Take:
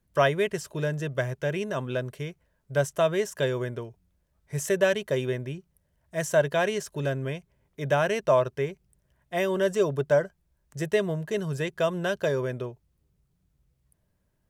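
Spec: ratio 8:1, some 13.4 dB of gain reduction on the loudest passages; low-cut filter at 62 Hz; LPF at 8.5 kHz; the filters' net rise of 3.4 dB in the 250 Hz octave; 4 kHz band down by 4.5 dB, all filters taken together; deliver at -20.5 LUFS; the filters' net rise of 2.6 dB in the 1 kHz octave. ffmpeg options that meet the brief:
-af "highpass=62,lowpass=8500,equalizer=f=250:t=o:g=5.5,equalizer=f=1000:t=o:g=3.5,equalizer=f=4000:t=o:g=-6.5,acompressor=threshold=0.0355:ratio=8,volume=5.01"

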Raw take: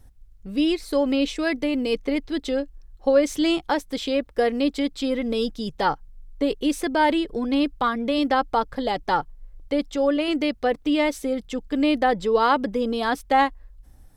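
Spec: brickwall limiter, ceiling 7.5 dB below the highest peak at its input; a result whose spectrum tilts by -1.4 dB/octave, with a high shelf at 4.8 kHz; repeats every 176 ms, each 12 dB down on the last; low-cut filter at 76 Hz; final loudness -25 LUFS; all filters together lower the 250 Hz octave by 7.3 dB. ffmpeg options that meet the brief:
-af "highpass=76,equalizer=f=250:t=o:g=-9,highshelf=f=4800:g=-5.5,alimiter=limit=0.158:level=0:latency=1,aecho=1:1:176|352|528:0.251|0.0628|0.0157,volume=1.41"

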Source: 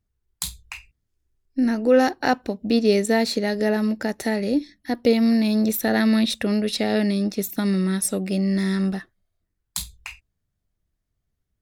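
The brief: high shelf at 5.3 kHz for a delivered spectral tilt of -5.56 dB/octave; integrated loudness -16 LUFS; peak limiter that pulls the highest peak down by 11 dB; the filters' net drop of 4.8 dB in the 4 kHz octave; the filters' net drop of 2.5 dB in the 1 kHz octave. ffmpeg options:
-af "equalizer=f=1000:t=o:g=-3.5,equalizer=f=4000:t=o:g=-3,highshelf=f=5300:g=-5.5,volume=3.35,alimiter=limit=0.398:level=0:latency=1"

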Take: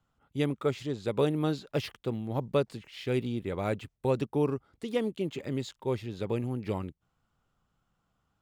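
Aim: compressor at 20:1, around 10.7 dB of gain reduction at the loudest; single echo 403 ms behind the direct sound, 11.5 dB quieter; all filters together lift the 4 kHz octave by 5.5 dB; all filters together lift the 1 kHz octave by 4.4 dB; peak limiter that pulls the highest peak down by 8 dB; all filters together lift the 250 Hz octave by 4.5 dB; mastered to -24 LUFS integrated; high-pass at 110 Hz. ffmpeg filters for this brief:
-af "highpass=110,equalizer=f=250:t=o:g=5.5,equalizer=f=1000:t=o:g=5,equalizer=f=4000:t=o:g=6.5,acompressor=threshold=0.0355:ratio=20,alimiter=level_in=1.12:limit=0.0631:level=0:latency=1,volume=0.891,aecho=1:1:403:0.266,volume=4.73"

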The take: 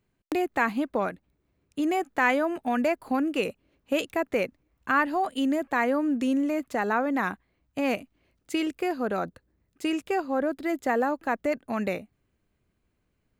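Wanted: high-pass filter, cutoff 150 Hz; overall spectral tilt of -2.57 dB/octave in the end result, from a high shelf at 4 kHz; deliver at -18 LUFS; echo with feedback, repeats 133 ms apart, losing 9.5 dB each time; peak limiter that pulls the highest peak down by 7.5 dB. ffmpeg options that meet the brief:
-af "highpass=150,highshelf=f=4000:g=6.5,alimiter=limit=0.168:level=0:latency=1,aecho=1:1:133|266|399|532:0.335|0.111|0.0365|0.012,volume=3.16"

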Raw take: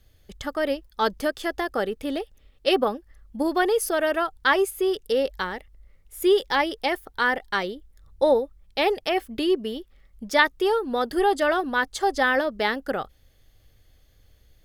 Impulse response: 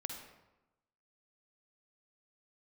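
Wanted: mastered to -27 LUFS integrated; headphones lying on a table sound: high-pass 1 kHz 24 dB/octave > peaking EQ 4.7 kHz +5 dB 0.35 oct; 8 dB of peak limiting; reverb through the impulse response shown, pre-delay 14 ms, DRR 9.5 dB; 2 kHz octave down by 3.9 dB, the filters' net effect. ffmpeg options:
-filter_complex "[0:a]equalizer=f=2000:t=o:g=-5,alimiter=limit=0.158:level=0:latency=1,asplit=2[s0][s1];[1:a]atrim=start_sample=2205,adelay=14[s2];[s1][s2]afir=irnorm=-1:irlink=0,volume=0.376[s3];[s0][s3]amix=inputs=2:normalize=0,highpass=f=1000:w=0.5412,highpass=f=1000:w=1.3066,equalizer=f=4700:t=o:w=0.35:g=5,volume=2"

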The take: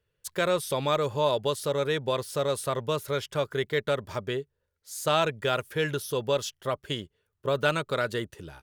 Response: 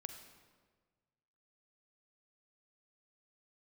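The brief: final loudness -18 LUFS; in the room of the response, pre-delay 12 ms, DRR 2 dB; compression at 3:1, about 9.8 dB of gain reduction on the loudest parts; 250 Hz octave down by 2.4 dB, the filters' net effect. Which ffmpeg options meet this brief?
-filter_complex "[0:a]equalizer=f=250:t=o:g=-4,acompressor=threshold=0.02:ratio=3,asplit=2[s0][s1];[1:a]atrim=start_sample=2205,adelay=12[s2];[s1][s2]afir=irnorm=-1:irlink=0,volume=1.19[s3];[s0][s3]amix=inputs=2:normalize=0,volume=7.08"

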